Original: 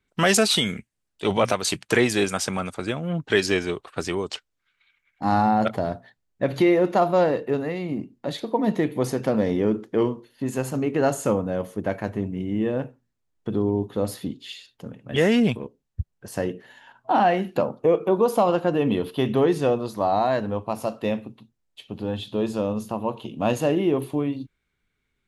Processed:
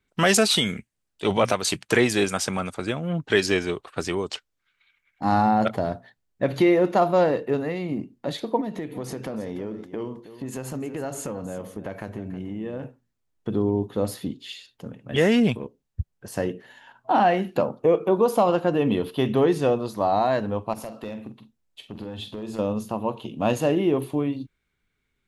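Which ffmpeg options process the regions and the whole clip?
-filter_complex "[0:a]asettb=1/sr,asplit=3[a][b][c];[a]atrim=end=8.614[d];[b]atrim=start=8.61:end=12.83,asetpts=PTS-STARTPTS,afade=t=in:d=0.004:c=qsin,afade=t=out:st=4.216:d=0.004:c=qsin,acompressor=threshold=-29dB:ratio=4:attack=3.2:release=140:knee=1:detection=peak,aecho=1:1:319:0.211,atrim=end_sample=186102[e];[c]atrim=start=12.826[f];[d][e]acrossfade=d=0.004:c1=hsin:c2=qsin[g];[g][f]acrossfade=d=0.004:c1=qsin:c2=hsin,asettb=1/sr,asplit=3[h][i][j];[h]atrim=end=20.734[k];[i]atrim=start=20.73:end=22.59,asetpts=PTS-STARTPTS,afade=t=in:d=0.004:c=qsin,afade=t=out:st=1.856:d=0.004:c=qsin,acompressor=threshold=-29dB:ratio=10:attack=3.2:release=140:knee=1:detection=peak,asoftclip=type=hard:threshold=-26.5dB,asplit=2[l][m];[m]adelay=46,volume=-11dB[n];[l][n]amix=inputs=2:normalize=0,atrim=end_sample=82026[o];[j]atrim=start=22.586[p];[k][o]acrossfade=d=0.004:c1=hsin:c2=qsin[q];[q][p]acrossfade=d=0.004:c1=qsin:c2=hsin"

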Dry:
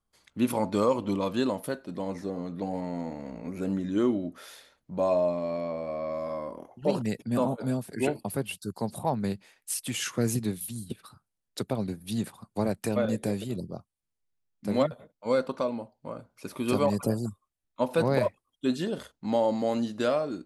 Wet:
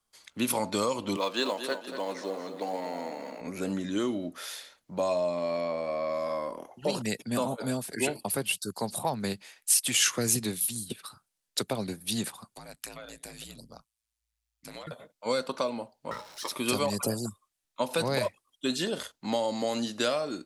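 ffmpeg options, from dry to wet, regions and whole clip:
-filter_complex "[0:a]asettb=1/sr,asplit=3[a][b][c];[a]atrim=end=1.164[d];[b]atrim=start=1.16:end=3.41,asetpts=PTS-STARTPTS,afade=t=in:d=0.004:c=qsin,afade=t=out:st=2.246:d=0.004:c=qsin,highpass=330,lowpass=6.2k,acrusher=bits=9:mode=log:mix=0:aa=0.000001,aecho=1:1:234|468|702|936:0.316|0.13|0.0532|0.0218,atrim=end_sample=99225[e];[c]atrim=start=3.406[f];[d][e]acrossfade=d=0.004:c1=hsin:c2=qsin[g];[g][f]acrossfade=d=0.004:c1=qsin:c2=hsin,asettb=1/sr,asplit=3[h][i][j];[h]atrim=end=12.544[k];[i]atrim=start=12.54:end=14.87,asetpts=PTS-STARTPTS,afade=t=in:d=0.004:c=qsin,afade=t=out:st=2.326:d=0.004:c=qsin,equalizer=f=330:t=o:w=1.6:g=-15,acompressor=threshold=-39dB:ratio=10:attack=3.2:release=140:knee=1:detection=peak,aeval=exprs='val(0)*sin(2*PI*56*n/s)':c=same[l];[j]atrim=start=14.866[m];[k][l]acrossfade=d=0.004:c1=hsin:c2=qsin[n];[n][m]acrossfade=d=0.004:c1=qsin:c2=hsin,asettb=1/sr,asplit=3[o][p][q];[o]atrim=end=16.114[r];[p]atrim=start=16.11:end=16.51,asetpts=PTS-STARTPTS,afade=t=in:d=0.004:c=qsin,afade=t=out:st=0.396:d=0.004:c=qsin,aeval=exprs='val(0)+0.5*0.00398*sgn(val(0))':c=same,equalizer=f=4.7k:w=5.5:g=14,aeval=exprs='val(0)*sin(2*PI*730*n/s)':c=same[s];[q]atrim=start=16.506[t];[r][s]acrossfade=d=0.004:c1=hsin:c2=qsin[u];[u][t]acrossfade=d=0.004:c1=qsin:c2=hsin,equalizer=f=6.7k:w=0.32:g=6.5,acrossover=split=190|3000[v][w][x];[w]acompressor=threshold=-27dB:ratio=6[y];[v][y][x]amix=inputs=3:normalize=0,lowshelf=f=270:g=-10,volume=3.5dB"

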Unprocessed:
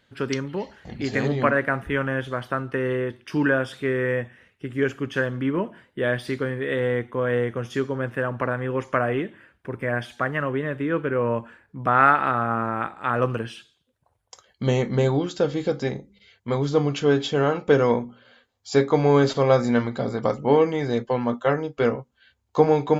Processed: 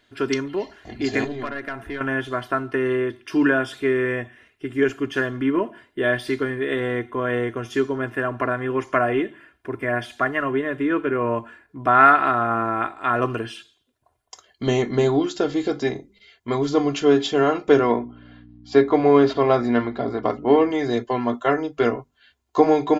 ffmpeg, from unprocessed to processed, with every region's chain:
-filter_complex "[0:a]asettb=1/sr,asplit=3[a][b][c];[a]atrim=end=1.244[d];[b]atrim=start=1.24:end=2.01,asetpts=PTS-STARTPTS,afade=t=in:d=0.004:c=qsin,afade=t=out:st=0.766:d=0.004:c=qsin,aeval=exprs='(tanh(4.47*val(0)+0.5)-tanh(0.5))/4.47':c=same,acompressor=threshold=-31dB:ratio=2.5:attack=3.2:release=140:knee=1:detection=peak,aeval=exprs='val(0)+0.00178*sin(2*PI*1600*n/s)':c=same[e];[c]atrim=start=2.006[f];[d][e]acrossfade=d=0.004:c1=hsin:c2=qsin[g];[g][f]acrossfade=d=0.004:c1=qsin:c2=hsin,asettb=1/sr,asplit=3[h][i][j];[h]atrim=end=17.794[k];[i]atrim=start=17.79:end=20.71,asetpts=PTS-STARTPTS,afade=t=in:d=0.004:c=qsin,afade=t=out:st=2.916:d=0.004:c=qsin,aeval=exprs='val(0)+0.0112*(sin(2*PI*60*n/s)+sin(2*PI*2*60*n/s)/2+sin(2*PI*3*60*n/s)/3+sin(2*PI*4*60*n/s)/4+sin(2*PI*5*60*n/s)/5)':c=same,adynamicsmooth=sensitivity=1:basefreq=4k,highpass=110,lowpass=5.5k[l];[j]atrim=start=20.706[m];[k][l]acrossfade=d=0.004:c1=hsin:c2=qsin[n];[n][m]acrossfade=d=0.004:c1=qsin:c2=hsin,equalizer=f=65:w=0.93:g=-5.5,bandreject=f=50:t=h:w=6,bandreject=f=100:t=h:w=6,bandreject=f=150:t=h:w=6,aecho=1:1:2.9:0.67,volume=1.5dB"

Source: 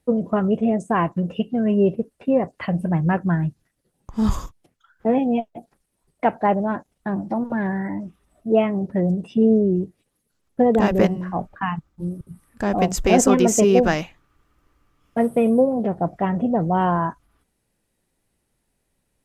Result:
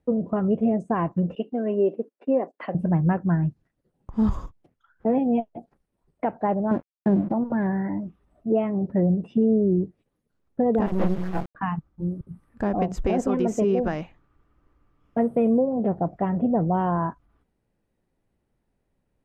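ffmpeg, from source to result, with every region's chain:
-filter_complex "[0:a]asettb=1/sr,asplit=3[a][b][c];[a]atrim=end=1.354[d];[b]atrim=start=1.35:end=2.75,asetpts=PTS-STARTPTS,afade=t=in:d=0.004:c=qsin,afade=t=out:st=1.396:d=0.004:c=qsin,highpass=f=270:w=0.5412,highpass=f=270:w=1.3066,agate=range=-13dB:threshold=-46dB:ratio=16:release=100:detection=peak[e];[c]atrim=start=2.746[f];[d][e]acrossfade=d=0.004:c1=hsin:c2=qsin[g];[g][f]acrossfade=d=0.004:c1=qsin:c2=hsin,asettb=1/sr,asplit=3[h][i][j];[h]atrim=end=6.714[k];[i]atrim=start=6.71:end=7.32,asetpts=PTS-STARTPTS,afade=t=in:d=0.004:c=qsin,afade=t=out:st=0.606:d=0.004:c=qsin,highpass=90,lowshelf=f=690:t=q:w=1.5:g=8,aeval=exprs='sgn(val(0))*max(abs(val(0))-0.0141,0)':c=same[l];[j]atrim=start=7.316[m];[k][l]acrossfade=d=0.004:c1=hsin:c2=qsin[n];[n][m]acrossfade=d=0.004:c1=qsin:c2=hsin,asettb=1/sr,asplit=3[o][p][q];[o]atrim=end=10.864[r];[p]atrim=start=10.86:end=11.55,asetpts=PTS-STARTPTS,afade=t=in:d=0.004:c=qsin,afade=t=out:st=0.686:d=0.004:c=qsin,aecho=1:1:6:0.97,atrim=end_sample=30429,volume=12.5dB,asoftclip=hard,volume=-12.5dB,acrusher=bits=3:dc=4:mix=0:aa=0.000001[s];[q]atrim=start=11.546[t];[r][s]acrossfade=d=0.004:c1=hsin:c2=qsin[u];[u][t]acrossfade=d=0.004:c1=qsin:c2=hsin,alimiter=limit=-12.5dB:level=0:latency=1:release=263,lowpass=f=1k:p=1"

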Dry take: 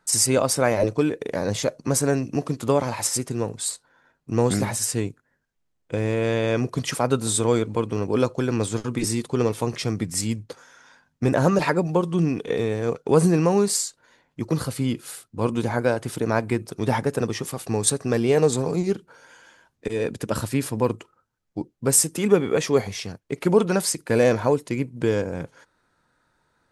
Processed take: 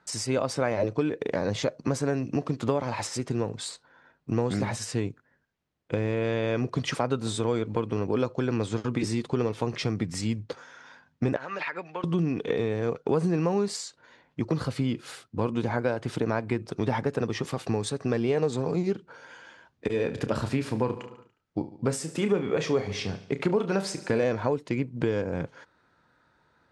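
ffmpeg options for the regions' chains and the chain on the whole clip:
-filter_complex "[0:a]asettb=1/sr,asplit=3[a][b][c];[a]atrim=end=11.364[d];[b]atrim=start=11.36:end=12.04,asetpts=PTS-STARTPTS,afade=t=in:d=0.004:c=qsin,afade=t=out:st=0.676:d=0.004:c=qsin,bandpass=f=2.1k:t=q:w=1.6,acompressor=threshold=-30dB:ratio=6:attack=3.2:release=140:knee=1:detection=peak,asoftclip=type=hard:threshold=-24.5dB[e];[c]atrim=start=12.036[f];[d][e]acrossfade=d=0.004:c1=hsin:c2=qsin[g];[g][f]acrossfade=d=0.004:c1=qsin:c2=hsin,asettb=1/sr,asplit=3[h][i][j];[h]atrim=end=19.874[k];[i]atrim=start=19.87:end=24.24,asetpts=PTS-STARTPTS,afade=t=in:d=0.004:c=qsin,afade=t=out:st=4.366:d=0.004:c=qsin,asplit=2[l][m];[m]adelay=31,volume=-10dB[n];[l][n]amix=inputs=2:normalize=0,atrim=end_sample=192717,aecho=1:1:72|144|216|288|360:0.158|0.084|0.0445|0.0236|0.0125,atrim=end_sample=192717[o];[j]atrim=start=24.236[p];[k][o]acrossfade=d=0.004:c1=hsin:c2=qsin[q];[q][p]acrossfade=d=0.004:c1=qsin:c2=hsin,highpass=49,acompressor=threshold=-27dB:ratio=3,lowpass=4.5k,volume=2.5dB"

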